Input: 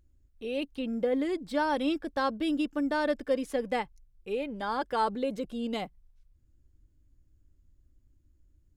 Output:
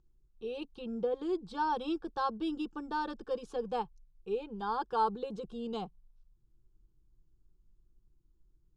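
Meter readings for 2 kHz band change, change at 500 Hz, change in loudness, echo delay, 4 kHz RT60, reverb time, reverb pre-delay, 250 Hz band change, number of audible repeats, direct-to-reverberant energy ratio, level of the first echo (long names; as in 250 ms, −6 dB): −9.0 dB, −5.5 dB, −5.0 dB, no echo audible, no reverb audible, no reverb audible, no reverb audible, −7.5 dB, no echo audible, no reverb audible, no echo audible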